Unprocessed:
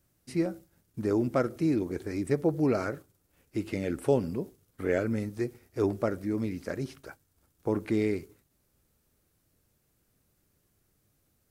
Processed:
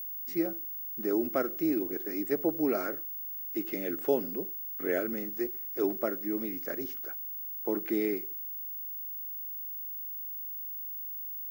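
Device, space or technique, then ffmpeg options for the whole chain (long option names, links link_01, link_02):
old television with a line whistle: -af "highpass=frequency=230:width=0.5412,highpass=frequency=230:width=1.3066,equalizer=frequency=240:width_type=q:width=4:gain=-4,equalizer=frequency=500:width_type=q:width=4:gain=-4,equalizer=frequency=1000:width_type=q:width=4:gain=-7,equalizer=frequency=2500:width_type=q:width=4:gain=-4,equalizer=frequency=4200:width_type=q:width=4:gain=-5,lowpass=frequency=7400:width=0.5412,lowpass=frequency=7400:width=1.3066,aeval=exprs='val(0)+0.0158*sin(2*PI*15625*n/s)':channel_layout=same"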